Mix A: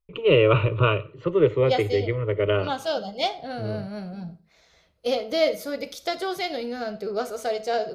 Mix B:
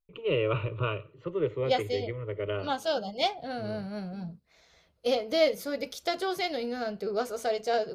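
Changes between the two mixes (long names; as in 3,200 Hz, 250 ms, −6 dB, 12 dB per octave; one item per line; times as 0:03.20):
first voice −10.0 dB
second voice: send off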